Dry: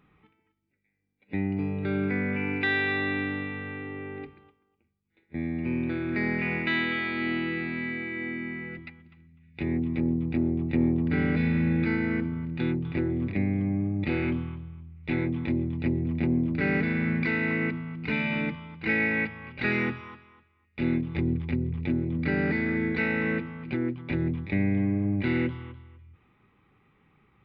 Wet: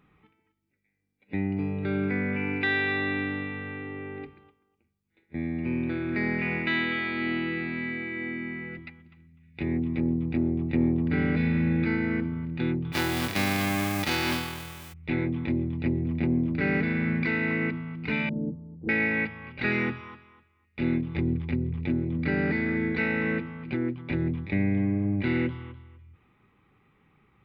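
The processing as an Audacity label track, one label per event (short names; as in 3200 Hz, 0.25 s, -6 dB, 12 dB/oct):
12.920000	14.920000	spectral whitening exponent 0.3
18.290000	18.890000	inverse Chebyshev low-pass stop band from 2300 Hz, stop band 70 dB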